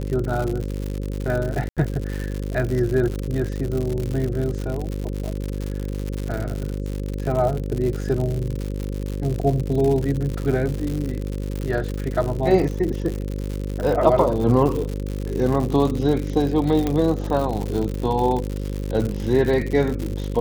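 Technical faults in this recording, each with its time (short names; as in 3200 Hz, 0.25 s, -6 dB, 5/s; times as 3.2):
buzz 50 Hz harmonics 11 -27 dBFS
crackle 130/s -25 dBFS
1.69–1.77 gap 77 ms
16.87 pop -10 dBFS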